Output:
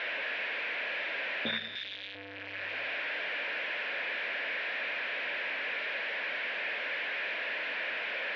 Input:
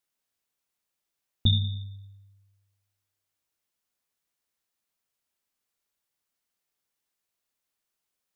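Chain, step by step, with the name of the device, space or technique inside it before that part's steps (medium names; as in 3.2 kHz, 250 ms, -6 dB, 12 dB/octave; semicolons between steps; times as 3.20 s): digital answering machine (band-pass 310–3100 Hz; one-bit delta coder 32 kbps, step -38 dBFS; cabinet simulation 370–3000 Hz, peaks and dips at 370 Hz -6 dB, 570 Hz +5 dB, 820 Hz -7 dB, 1.2 kHz -10 dB, 1.7 kHz +8 dB, 2.4 kHz +7 dB); 1.75–2.15 s: tilt shelf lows -9 dB, about 1.4 kHz; trim +8 dB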